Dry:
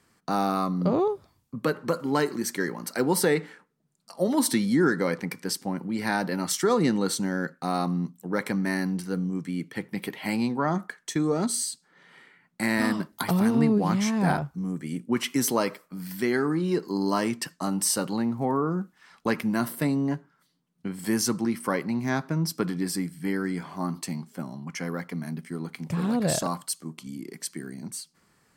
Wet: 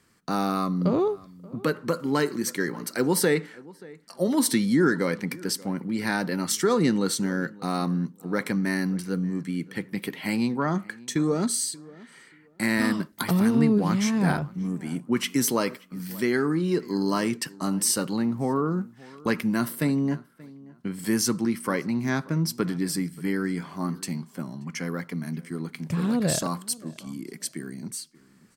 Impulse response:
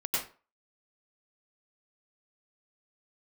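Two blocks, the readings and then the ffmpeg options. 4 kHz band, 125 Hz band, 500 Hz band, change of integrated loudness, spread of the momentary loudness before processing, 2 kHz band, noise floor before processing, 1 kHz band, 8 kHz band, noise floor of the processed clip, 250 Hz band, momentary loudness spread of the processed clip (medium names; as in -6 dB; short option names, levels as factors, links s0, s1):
+1.5 dB, +1.5 dB, 0.0 dB, +1.0 dB, 12 LU, +1.0 dB, -68 dBFS, -1.5 dB, +1.5 dB, -56 dBFS, +1.5 dB, 12 LU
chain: -filter_complex "[0:a]equalizer=f=770:w=1.8:g=-5.5,asplit=2[s0][s1];[s1]adelay=581,lowpass=f=2200:p=1,volume=0.0841,asplit=2[s2][s3];[s3]adelay=581,lowpass=f=2200:p=1,volume=0.23[s4];[s2][s4]amix=inputs=2:normalize=0[s5];[s0][s5]amix=inputs=2:normalize=0,volume=1.19"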